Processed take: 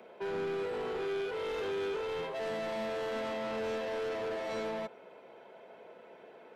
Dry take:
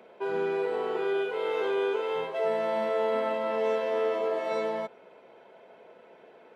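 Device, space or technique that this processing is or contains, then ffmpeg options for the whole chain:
one-band saturation: -filter_complex "[0:a]acrossover=split=260|3800[a][b][c];[b]asoftclip=type=tanh:threshold=-35.5dB[d];[a][d][c]amix=inputs=3:normalize=0"

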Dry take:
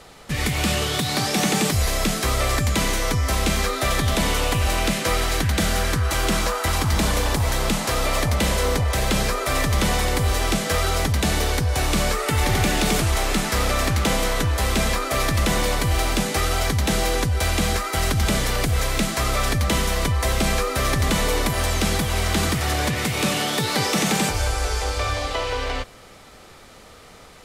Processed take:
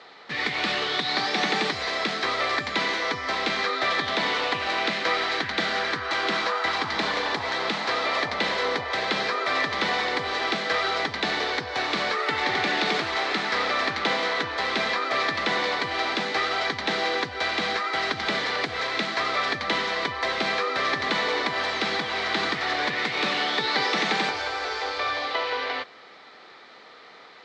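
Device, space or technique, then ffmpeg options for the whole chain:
phone earpiece: -af "highpass=390,equalizer=f=570:t=q:w=4:g=-5,equalizer=f=1.9k:t=q:w=4:g=4,equalizer=f=2.8k:t=q:w=4:g=-4,equalizer=f=4.1k:t=q:w=4:g=4,lowpass=f=4.3k:w=0.5412,lowpass=f=4.3k:w=1.3066"

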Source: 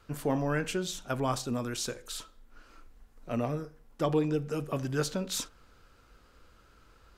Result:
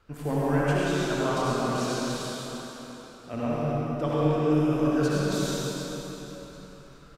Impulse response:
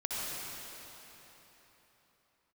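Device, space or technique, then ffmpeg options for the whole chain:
swimming-pool hall: -filter_complex "[0:a]asettb=1/sr,asplit=3[a][b][c];[a]atrim=end=1.404[d];[b]atrim=start=1.4:end=3.34,asetpts=PTS-STARTPTS,afade=t=in:d=0.004:c=qsin,afade=t=out:st=1.936:d=0.004:c=qsin,highpass=94[e];[c]atrim=start=3.336[f];[d][e]acrossfade=d=0.004:c1=hsin:c2=qsin[g];[g][f]acrossfade=d=0.004:c1=qsin:c2=hsin,aecho=1:1:102|134.1:0.355|0.282[h];[1:a]atrim=start_sample=2205[i];[h][i]afir=irnorm=-1:irlink=0,highshelf=f=4.9k:g=-7"

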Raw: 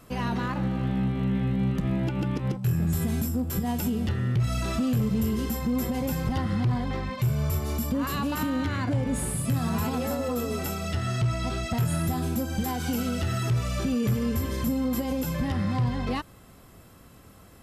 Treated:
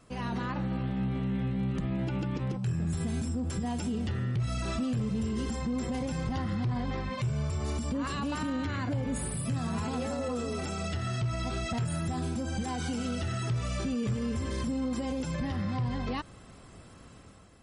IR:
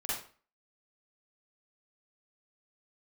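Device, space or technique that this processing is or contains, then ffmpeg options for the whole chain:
low-bitrate web radio: -af "dynaudnorm=f=100:g=9:m=7dB,alimiter=limit=-18.5dB:level=0:latency=1:release=61,volume=-6dB" -ar 48000 -c:a libmp3lame -b:a 40k

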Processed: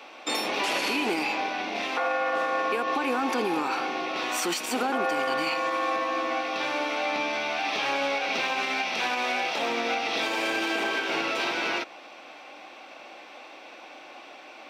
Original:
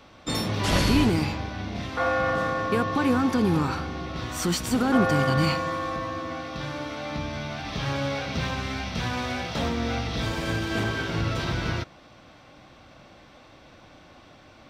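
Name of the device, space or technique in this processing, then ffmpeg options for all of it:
laptop speaker: -af "highpass=f=310:w=0.5412,highpass=f=310:w=1.3066,equalizer=f=800:t=o:w=0.41:g=6,equalizer=f=2.5k:t=o:w=0.42:g=9.5,alimiter=limit=-22dB:level=0:latency=1:release=121,volume=4dB"

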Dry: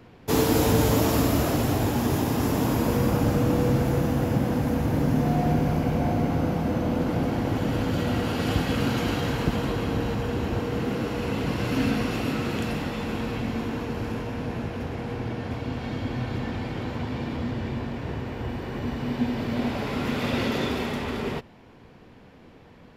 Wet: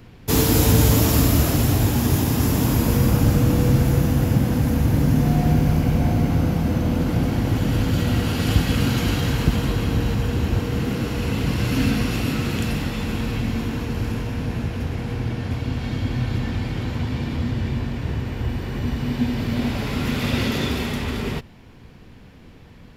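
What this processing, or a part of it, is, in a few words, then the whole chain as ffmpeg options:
smiley-face EQ: -af "lowshelf=f=100:g=7.5,equalizer=f=640:t=o:w=2.5:g=-6.5,highshelf=f=6.8k:g=5,volume=5dB"

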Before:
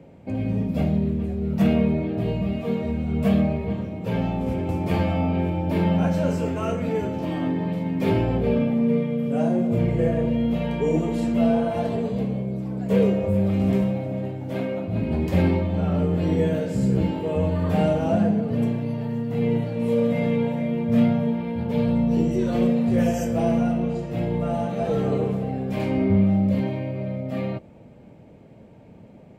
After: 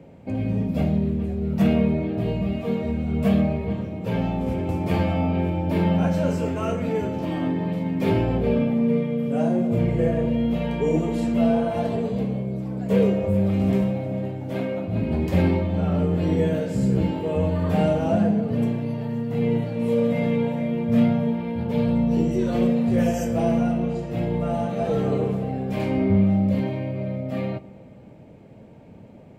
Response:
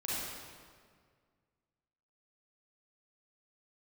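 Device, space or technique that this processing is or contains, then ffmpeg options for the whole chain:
ducked reverb: -filter_complex "[0:a]asplit=3[a][b][c];[1:a]atrim=start_sample=2205[d];[b][d]afir=irnorm=-1:irlink=0[e];[c]apad=whole_len=1295981[f];[e][f]sidechaincompress=threshold=-30dB:ratio=8:attack=16:release=1460,volume=-15dB[g];[a][g]amix=inputs=2:normalize=0"

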